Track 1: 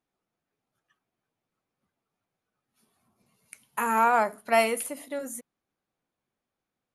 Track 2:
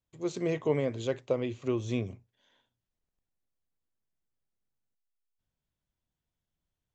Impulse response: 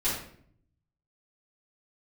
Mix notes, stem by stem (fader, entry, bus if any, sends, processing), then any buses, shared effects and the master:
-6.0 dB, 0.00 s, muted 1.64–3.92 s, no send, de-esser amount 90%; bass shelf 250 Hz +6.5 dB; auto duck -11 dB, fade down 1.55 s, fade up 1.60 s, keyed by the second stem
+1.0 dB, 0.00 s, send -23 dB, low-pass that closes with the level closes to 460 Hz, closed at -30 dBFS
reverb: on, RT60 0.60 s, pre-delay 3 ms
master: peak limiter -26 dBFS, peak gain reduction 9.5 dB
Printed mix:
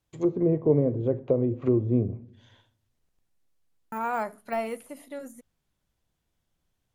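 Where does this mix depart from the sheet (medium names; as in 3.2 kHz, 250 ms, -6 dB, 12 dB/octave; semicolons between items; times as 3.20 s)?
stem 2 +1.0 dB -> +8.0 dB; master: missing peak limiter -26 dBFS, peak gain reduction 9.5 dB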